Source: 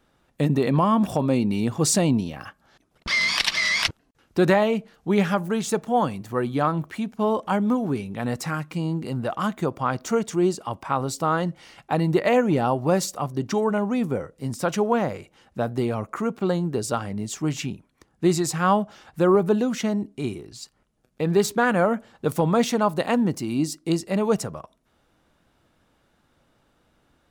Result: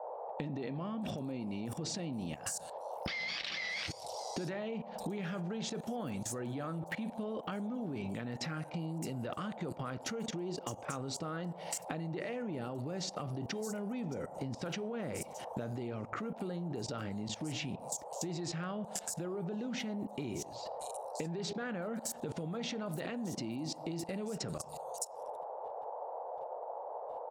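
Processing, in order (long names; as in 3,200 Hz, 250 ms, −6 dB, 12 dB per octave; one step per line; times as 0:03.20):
brickwall limiter −18 dBFS, peak gain reduction 10.5 dB
high-pass filter 110 Hz 6 dB per octave
parametric band 910 Hz −14 dB 0.7 octaves
downward expander −57 dBFS
high-shelf EQ 11,000 Hz −7.5 dB
multiband delay without the direct sound lows, highs 620 ms, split 5,900 Hz
on a send at −14 dB: convolution reverb RT60 0.50 s, pre-delay 7 ms
on the sum: output level in coarse steps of 20 dB
noise in a band 470–910 Hz −54 dBFS
downward compressor 12 to 1, threshold −47 dBFS, peak gain reduction 12 dB
level +11.5 dB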